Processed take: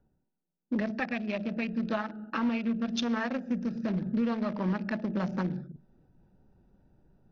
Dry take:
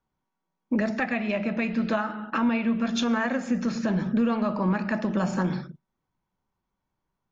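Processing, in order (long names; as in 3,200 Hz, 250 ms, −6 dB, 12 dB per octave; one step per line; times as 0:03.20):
adaptive Wiener filter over 41 samples
Butterworth low-pass 6,000 Hz 72 dB per octave
high-shelf EQ 4,600 Hz +11.5 dB
reversed playback
upward compression, threshold −36 dBFS
reversed playback
level −4.5 dB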